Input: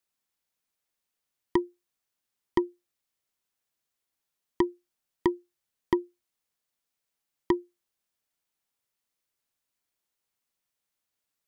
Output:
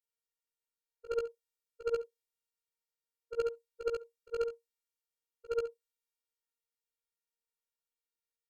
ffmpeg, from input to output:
ffmpeg -i in.wav -af "afftfilt=real='re':imag='-im':win_size=8192:overlap=0.75,equalizer=frequency=380:width=7.9:gain=5.5,flanger=delay=19:depth=6.1:speed=0.4,afftfilt=real='hypot(re,im)*cos(PI*b)':imag='0':win_size=512:overlap=0.75,asetrate=59535,aresample=44100,adynamicequalizer=threshold=0.00178:dfrequency=2000:dqfactor=0.7:tfrequency=2000:tqfactor=0.7:attack=5:release=100:ratio=0.375:range=2.5:mode=boostabove:tftype=highshelf" out.wav

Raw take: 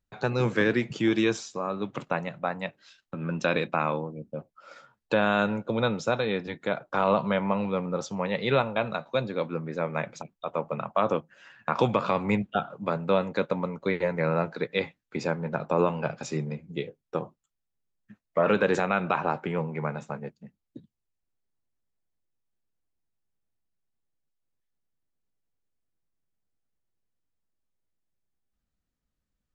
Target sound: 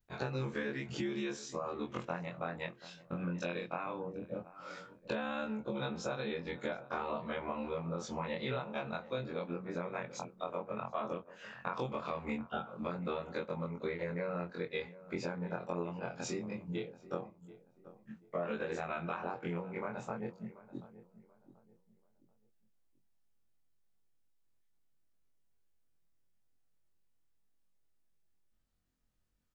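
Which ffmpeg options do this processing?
ffmpeg -i in.wav -filter_complex "[0:a]afftfilt=real='re':imag='-im':win_size=2048:overlap=0.75,acompressor=threshold=-41dB:ratio=6,asplit=2[link_01][link_02];[link_02]adelay=734,lowpass=frequency=1200:poles=1,volume=-16dB,asplit=2[link_03][link_04];[link_04]adelay=734,lowpass=frequency=1200:poles=1,volume=0.32,asplit=2[link_05][link_06];[link_06]adelay=734,lowpass=frequency=1200:poles=1,volume=0.32[link_07];[link_01][link_03][link_05][link_07]amix=inputs=4:normalize=0,volume=5.5dB" out.wav

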